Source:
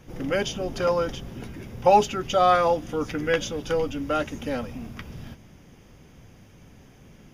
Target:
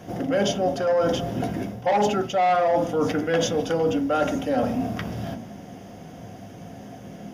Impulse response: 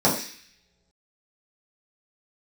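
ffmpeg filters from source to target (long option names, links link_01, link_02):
-filter_complex "[0:a]equalizer=frequency=700:width=7.2:gain=15,bandreject=frequency=2400:width=20,asplit=2[link_01][link_02];[1:a]atrim=start_sample=2205,lowpass=2900[link_03];[link_02][link_03]afir=irnorm=-1:irlink=0,volume=-22dB[link_04];[link_01][link_04]amix=inputs=2:normalize=0,asoftclip=type=tanh:threshold=-9.5dB,highpass=80,areverse,acompressor=threshold=-26dB:ratio=6,areverse,volume=6.5dB"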